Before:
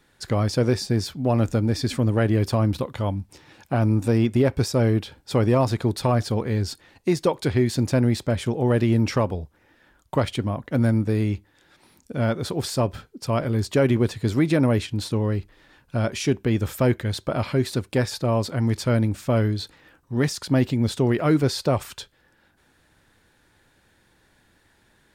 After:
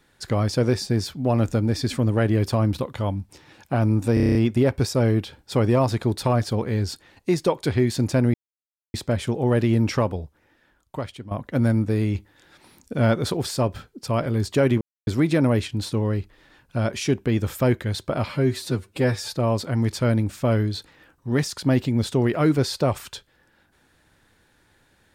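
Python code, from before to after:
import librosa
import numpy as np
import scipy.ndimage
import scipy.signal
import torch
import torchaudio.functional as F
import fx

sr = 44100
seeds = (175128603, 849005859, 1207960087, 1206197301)

y = fx.edit(x, sr, fx.stutter(start_s=4.14, slice_s=0.03, count=8),
    fx.insert_silence(at_s=8.13, length_s=0.6),
    fx.fade_out_to(start_s=9.26, length_s=1.24, floor_db=-14.5),
    fx.clip_gain(start_s=11.34, length_s=1.22, db=3.5),
    fx.silence(start_s=14.0, length_s=0.26),
    fx.stretch_span(start_s=17.48, length_s=0.68, factor=1.5), tone=tone)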